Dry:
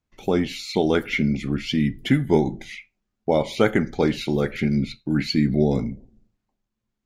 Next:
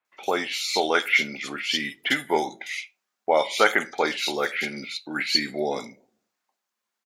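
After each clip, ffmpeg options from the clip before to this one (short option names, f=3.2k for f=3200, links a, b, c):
-filter_complex "[0:a]highpass=860,acrossover=split=3000[a][b];[b]adelay=50[c];[a][c]amix=inputs=2:normalize=0,volume=8dB"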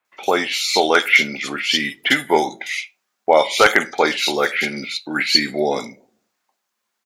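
-af "aeval=exprs='0.398*(abs(mod(val(0)/0.398+3,4)-2)-1)':c=same,volume=7dB"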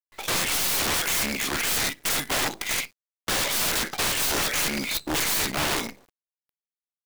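-af "acontrast=69,acrusher=bits=5:dc=4:mix=0:aa=0.000001,aeval=exprs='(mod(4.22*val(0)+1,2)-1)/4.22':c=same,volume=-7dB"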